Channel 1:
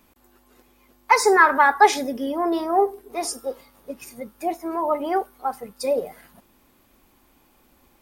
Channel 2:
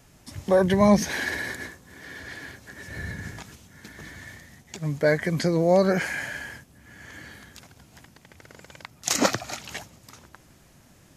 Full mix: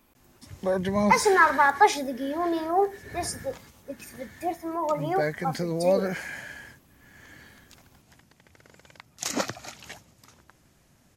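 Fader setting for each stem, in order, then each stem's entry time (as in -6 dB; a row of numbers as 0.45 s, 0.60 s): -4.0 dB, -6.5 dB; 0.00 s, 0.15 s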